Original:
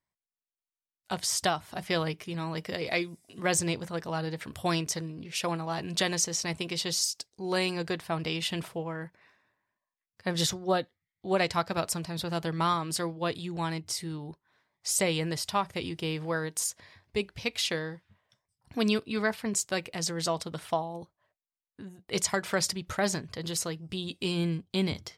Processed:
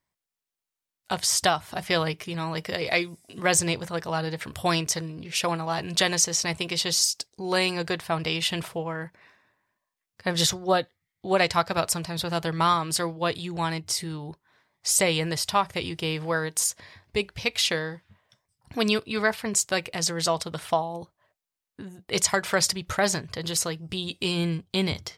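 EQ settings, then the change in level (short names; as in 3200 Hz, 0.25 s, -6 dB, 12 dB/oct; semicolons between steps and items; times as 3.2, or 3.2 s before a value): dynamic EQ 250 Hz, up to -6 dB, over -45 dBFS, Q 1.1; +6.0 dB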